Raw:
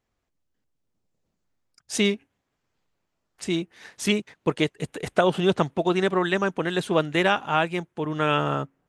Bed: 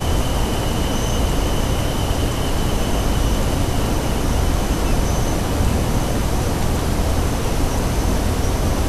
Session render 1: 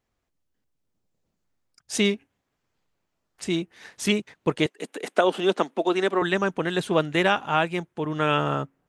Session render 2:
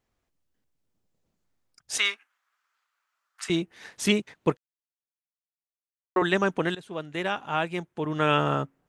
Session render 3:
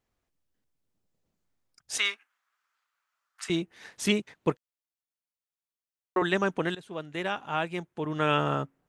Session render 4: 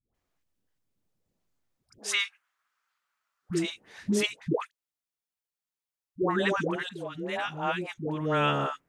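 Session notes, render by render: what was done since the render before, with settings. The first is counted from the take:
0:04.66–0:06.22: Butterworth high-pass 220 Hz
0:01.98–0:03.50: high-pass with resonance 1,300 Hz, resonance Q 3.4; 0:04.57–0:06.16: silence; 0:06.75–0:08.30: fade in, from −19.5 dB
level −2.5 dB
all-pass dispersion highs, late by 146 ms, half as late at 560 Hz

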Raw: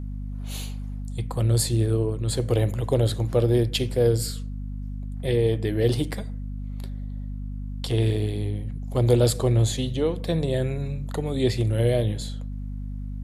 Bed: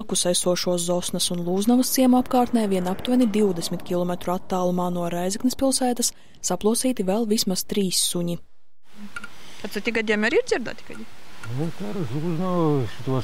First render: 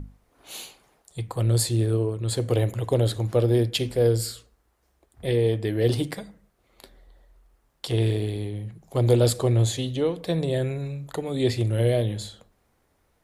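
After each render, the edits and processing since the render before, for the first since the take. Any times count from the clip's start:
mains-hum notches 50/100/150/200/250 Hz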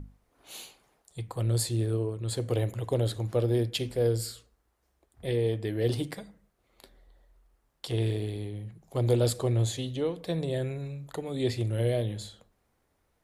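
level −5.5 dB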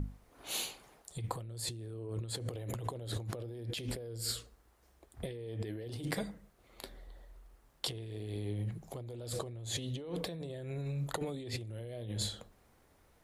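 brickwall limiter −23 dBFS, peak gain reduction 9.5 dB
compressor whose output falls as the input rises −40 dBFS, ratio −1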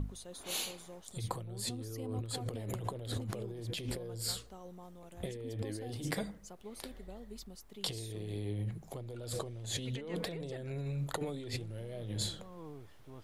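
mix in bed −27.5 dB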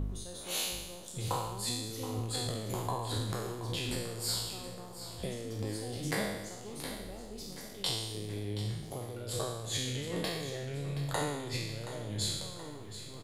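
peak hold with a decay on every bin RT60 1.03 s
on a send: repeating echo 725 ms, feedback 56%, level −12.5 dB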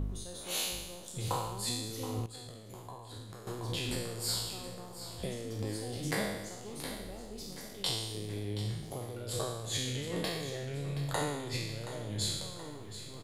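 0:02.26–0:03.47: clip gain −12 dB

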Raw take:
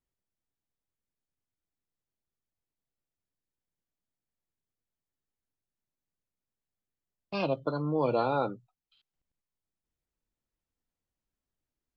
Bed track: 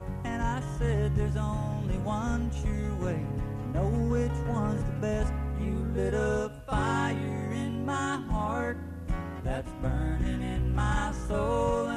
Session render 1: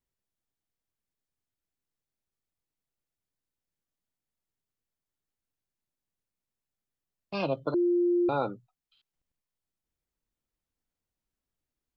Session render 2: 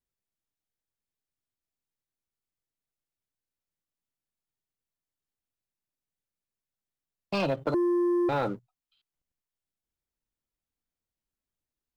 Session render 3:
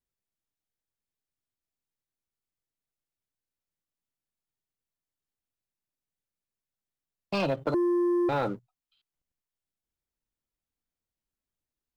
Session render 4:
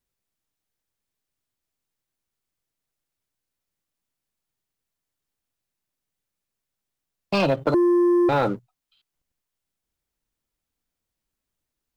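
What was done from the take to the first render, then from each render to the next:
0:07.74–0:08.29: beep over 350 Hz −21.5 dBFS
leveller curve on the samples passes 2; downward compressor, threshold −24 dBFS, peak gain reduction 4.5 dB
no processing that can be heard
level +7 dB

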